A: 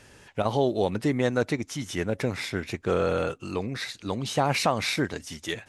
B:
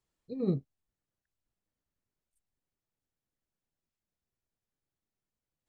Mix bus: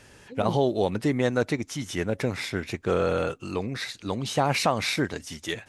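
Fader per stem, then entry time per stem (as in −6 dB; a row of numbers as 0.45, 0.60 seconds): +0.5, −2.5 decibels; 0.00, 0.00 seconds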